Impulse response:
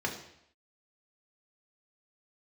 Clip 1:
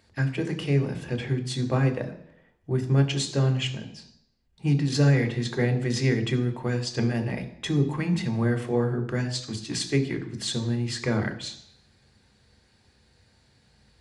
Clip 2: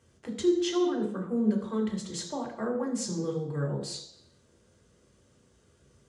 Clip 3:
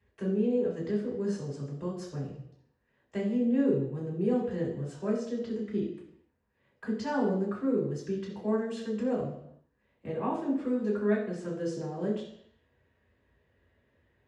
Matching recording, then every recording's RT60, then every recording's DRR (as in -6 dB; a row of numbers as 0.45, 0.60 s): 2; 0.75, 0.75, 0.75 s; 5.0, -0.5, -8.0 dB